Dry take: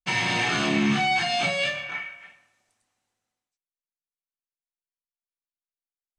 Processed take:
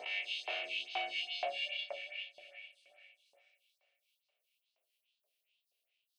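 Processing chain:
peak hold with a rise ahead of every peak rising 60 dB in 1.37 s
camcorder AGC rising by 15 dB per second
drawn EQ curve 140 Hz 0 dB, 240 Hz −7 dB, 420 Hz +6 dB, 640 Hz +9 dB, 1,000 Hz −29 dB, 1,700 Hz −24 dB, 2,700 Hz −3 dB, 7,100 Hz −21 dB, 11,000 Hz −16 dB
transient designer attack −6 dB, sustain +8 dB
delay that swaps between a low-pass and a high-pass 138 ms, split 970 Hz, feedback 72%, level −4 dB
auto-filter high-pass saw up 2.1 Hz 990–5,100 Hz
phaser with staggered stages 2.4 Hz
level −6.5 dB

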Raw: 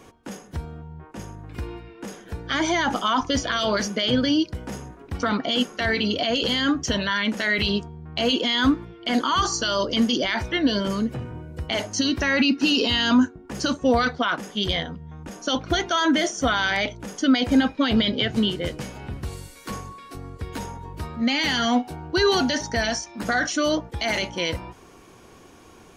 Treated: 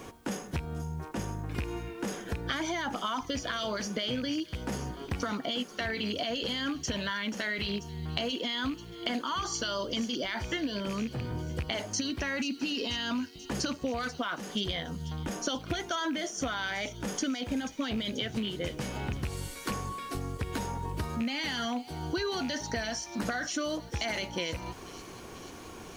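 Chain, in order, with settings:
loose part that buzzes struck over −25 dBFS, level −22 dBFS
downward compressor 12 to 1, threshold −33 dBFS, peak gain reduction 20 dB
background noise white −72 dBFS
on a send: delay with a high-pass on its return 486 ms, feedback 67%, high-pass 4,500 Hz, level −11 dB
on the sum: level +3.5 dB

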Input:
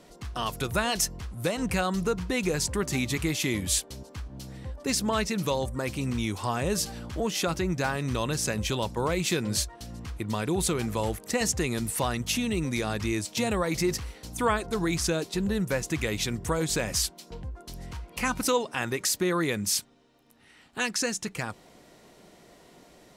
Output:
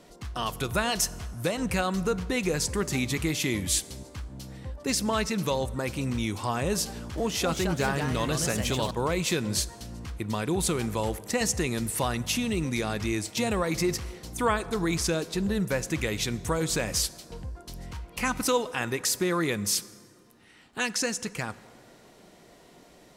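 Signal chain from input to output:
convolution reverb RT60 2.3 s, pre-delay 22 ms, DRR 17.5 dB
0:06.90–0:08.91: delay with pitch and tempo change per echo 275 ms, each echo +2 semitones, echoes 2, each echo −6 dB

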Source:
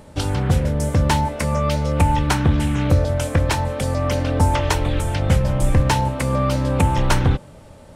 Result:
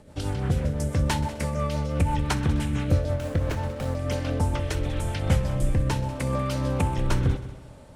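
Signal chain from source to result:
rotating-speaker cabinet horn 6 Hz, later 0.8 Hz, at 0:03.45
echo machine with several playback heads 64 ms, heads all three, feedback 46%, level −19 dB
0:03.16–0:03.97: windowed peak hold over 9 samples
level −5 dB

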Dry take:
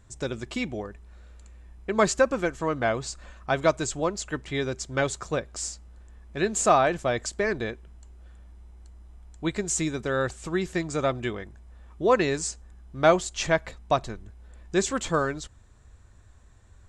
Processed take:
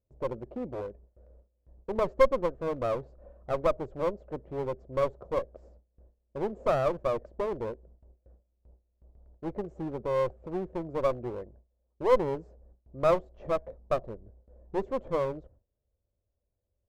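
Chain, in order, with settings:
low-pass with resonance 550 Hz, resonance Q 4.9
noise gate with hold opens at −40 dBFS
asymmetric clip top −28.5 dBFS
level −7.5 dB

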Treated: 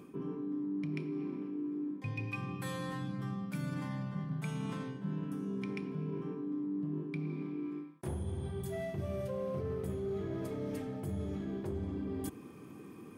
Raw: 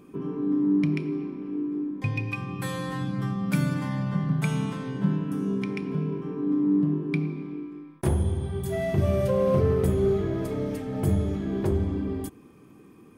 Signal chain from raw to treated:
high-pass filter 79 Hz
reversed playback
downward compressor 5 to 1, threshold −38 dBFS, peak gain reduction 17.5 dB
reversed playback
level +1.5 dB

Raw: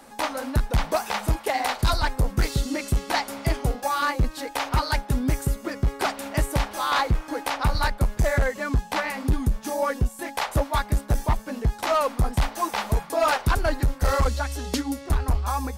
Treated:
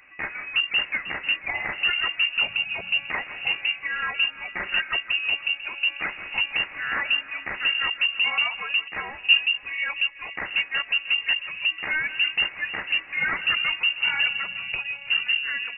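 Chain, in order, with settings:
0:04.37–0:04.82: comb filter 5.8 ms, depth 60%
echo with a time of its own for lows and highs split 560 Hz, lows 492 ms, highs 165 ms, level −14 dB
voice inversion scrambler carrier 2,800 Hz
0:08.88–0:09.39: multiband upward and downward expander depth 100%
level −4 dB

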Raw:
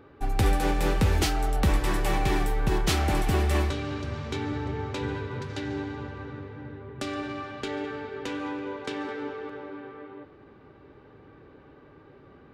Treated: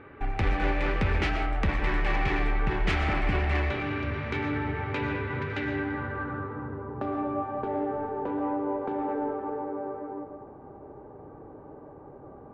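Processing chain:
hum removal 54.87 Hz, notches 14
in parallel at +1.5 dB: downward compressor, threshold −33 dBFS, peak gain reduction 14 dB
on the sum: low-pass filter sweep 2,200 Hz → 800 Hz, 0:05.62–0:07.27
soft clipping −16.5 dBFS, distortion −17 dB
convolution reverb RT60 0.70 s, pre-delay 80 ms, DRR 6.5 dB
level −3.5 dB

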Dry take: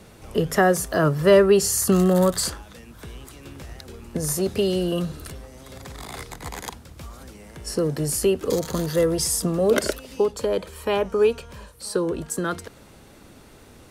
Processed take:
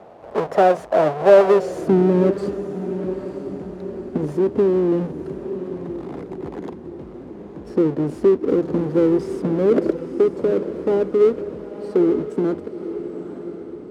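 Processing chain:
each half-wave held at its own peak
in parallel at −2.5 dB: downward compressor, threshold −23 dBFS, peak gain reduction 14 dB
on the sum: feedback delay with all-pass diffusion 940 ms, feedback 48%, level −11 dB
band-pass filter sweep 650 Hz → 320 Hz, 0:01.44–0:01.95
level +3.5 dB

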